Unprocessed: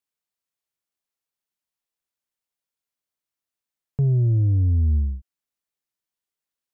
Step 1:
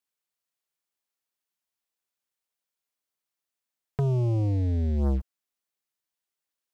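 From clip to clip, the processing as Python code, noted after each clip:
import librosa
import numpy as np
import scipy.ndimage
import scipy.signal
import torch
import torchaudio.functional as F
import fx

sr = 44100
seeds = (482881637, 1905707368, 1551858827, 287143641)

y = fx.over_compress(x, sr, threshold_db=-23.0, ratio=-0.5)
y = fx.leveller(y, sr, passes=3)
y = fx.low_shelf(y, sr, hz=170.0, db=-7.5)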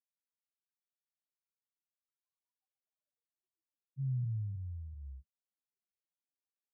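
y = scipy.signal.medfilt(x, 15)
y = fx.spec_topn(y, sr, count=1)
y = fx.filter_sweep_highpass(y, sr, from_hz=1700.0, to_hz=190.0, start_s=1.79, end_s=4.23, q=5.9)
y = F.gain(torch.from_numpy(y), -1.0).numpy()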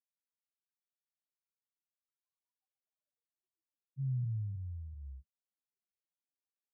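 y = x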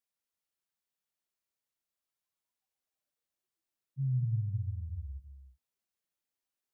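y = fx.rev_gated(x, sr, seeds[0], gate_ms=360, shape='rising', drr_db=7.0)
y = F.gain(torch.from_numpy(y), 3.5).numpy()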